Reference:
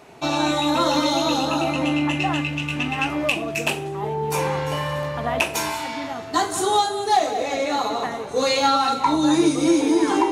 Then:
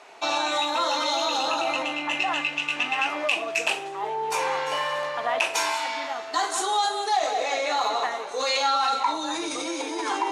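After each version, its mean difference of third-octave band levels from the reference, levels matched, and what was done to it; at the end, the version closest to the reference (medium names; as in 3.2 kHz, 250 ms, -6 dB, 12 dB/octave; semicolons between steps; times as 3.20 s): 7.0 dB: in parallel at -2 dB: compressor with a negative ratio -23 dBFS, ratio -0.5; on the sum: band-pass 660–7900 Hz; trim -4.5 dB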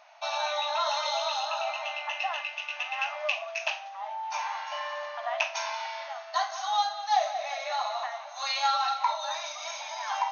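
14.5 dB: brick-wall FIR band-pass 570–6600 Hz; flutter echo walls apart 8.9 m, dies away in 0.23 s; trim -6.5 dB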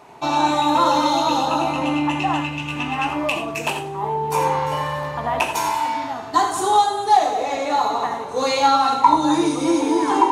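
3.0 dB: peaking EQ 940 Hz +10 dB 0.6 oct; gated-style reverb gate 110 ms rising, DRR 7 dB; trim -2.5 dB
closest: third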